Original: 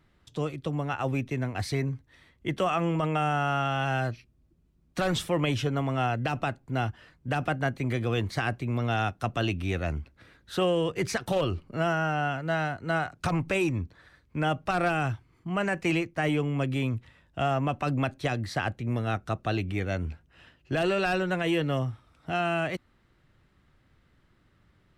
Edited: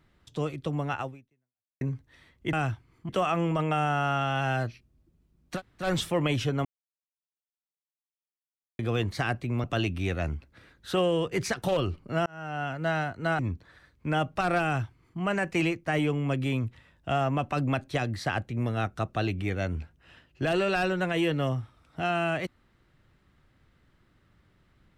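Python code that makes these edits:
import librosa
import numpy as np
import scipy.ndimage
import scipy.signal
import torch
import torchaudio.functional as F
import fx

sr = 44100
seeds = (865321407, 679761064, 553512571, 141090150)

y = fx.edit(x, sr, fx.fade_out_span(start_s=1.0, length_s=0.81, curve='exp'),
    fx.insert_room_tone(at_s=5.01, length_s=0.26, crossfade_s=0.1),
    fx.silence(start_s=5.83, length_s=2.14),
    fx.cut(start_s=8.82, length_s=0.46),
    fx.fade_in_span(start_s=11.9, length_s=0.55),
    fx.cut(start_s=13.03, length_s=0.66),
    fx.duplicate(start_s=14.94, length_s=0.56, to_s=2.53), tone=tone)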